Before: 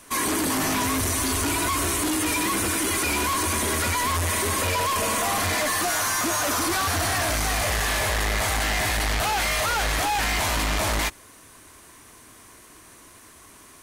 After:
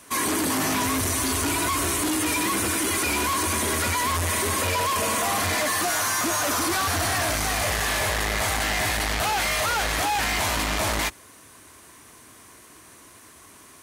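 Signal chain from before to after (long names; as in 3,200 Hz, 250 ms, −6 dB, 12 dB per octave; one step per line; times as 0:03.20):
high-pass filter 62 Hz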